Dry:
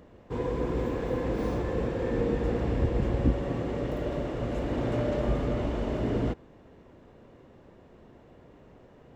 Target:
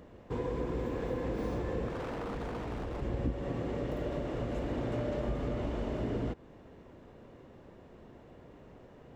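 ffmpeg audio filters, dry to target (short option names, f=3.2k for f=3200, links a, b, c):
-filter_complex "[0:a]acompressor=threshold=-33dB:ratio=2.5,asettb=1/sr,asplit=3[a][b][c];[a]atrim=end=1.884[d];[b]atrim=start=1.88:end=3.02,asetpts=PTS-STARTPTS,afade=t=in:d=0.004:c=qsin,afade=t=out:st=1.136:d=0.004:c=qsin,aeval=exprs='0.0237*(abs(mod(val(0)/0.0237+3,4)-2)-1)':c=same[e];[c]atrim=start=3.016[f];[d][e]acrossfade=d=0.004:c1=hsin:c2=qsin[g];[g][f]acrossfade=d=0.004:c1=qsin:c2=hsin"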